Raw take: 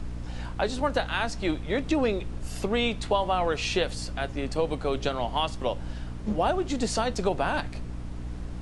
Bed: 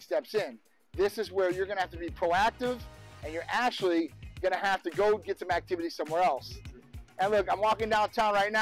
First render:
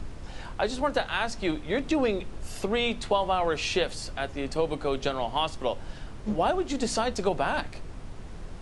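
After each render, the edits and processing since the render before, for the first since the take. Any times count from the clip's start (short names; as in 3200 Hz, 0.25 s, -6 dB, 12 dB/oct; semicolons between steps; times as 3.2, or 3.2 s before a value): notches 60/120/180/240/300 Hz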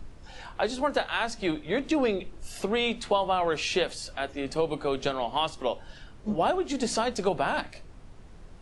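noise print and reduce 8 dB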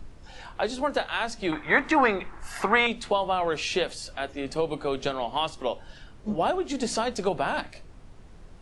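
1.52–2.87 band shelf 1300 Hz +15.5 dB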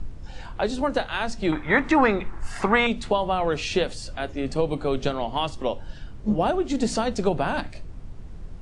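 steep low-pass 9900 Hz 48 dB/oct; low shelf 280 Hz +11 dB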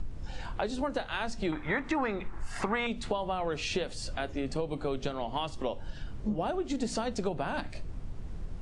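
compressor 3:1, threshold -31 dBFS, peak gain reduction 13 dB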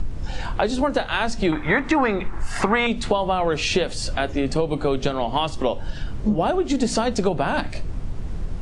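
gain +11 dB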